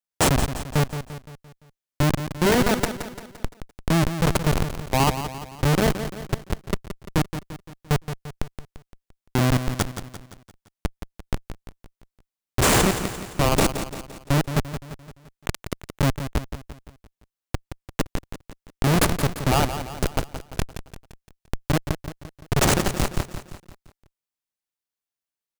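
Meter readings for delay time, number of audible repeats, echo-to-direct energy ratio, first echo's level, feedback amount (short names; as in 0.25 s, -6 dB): 0.172 s, 5, -9.0 dB, -10.0 dB, 50%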